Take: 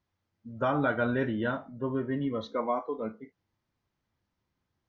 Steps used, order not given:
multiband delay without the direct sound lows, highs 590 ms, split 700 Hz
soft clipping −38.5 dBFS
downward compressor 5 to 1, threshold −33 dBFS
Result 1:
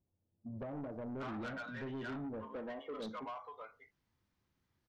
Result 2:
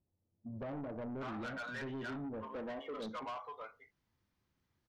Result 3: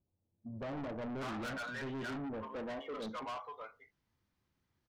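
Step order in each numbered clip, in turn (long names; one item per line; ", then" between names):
downward compressor, then multiband delay without the direct sound, then soft clipping
multiband delay without the direct sound, then downward compressor, then soft clipping
multiband delay without the direct sound, then soft clipping, then downward compressor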